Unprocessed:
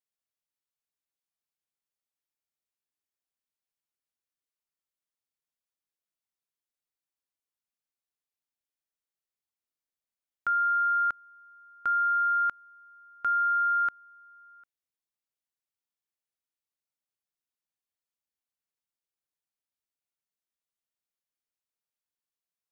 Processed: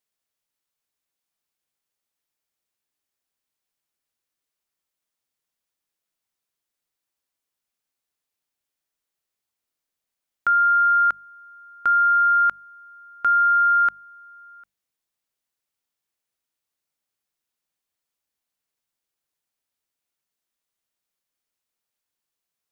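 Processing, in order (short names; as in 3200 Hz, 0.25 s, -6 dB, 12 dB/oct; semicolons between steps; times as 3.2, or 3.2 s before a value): notches 50/100/150/200 Hz; gain +8 dB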